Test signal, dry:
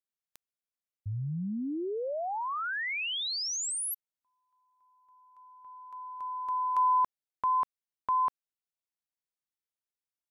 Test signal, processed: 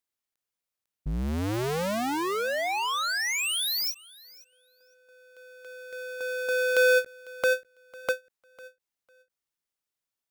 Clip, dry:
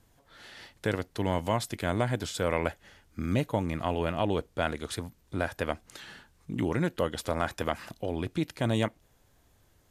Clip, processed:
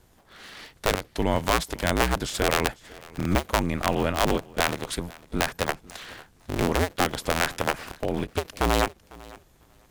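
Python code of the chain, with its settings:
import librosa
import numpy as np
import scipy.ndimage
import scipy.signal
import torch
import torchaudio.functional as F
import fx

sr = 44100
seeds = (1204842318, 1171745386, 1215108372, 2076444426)

y = fx.cycle_switch(x, sr, every=2, mode='inverted')
y = fx.echo_feedback(y, sr, ms=500, feedback_pct=16, wet_db=-22.5)
y = fx.end_taper(y, sr, db_per_s=350.0)
y = y * 10.0 ** (5.0 / 20.0)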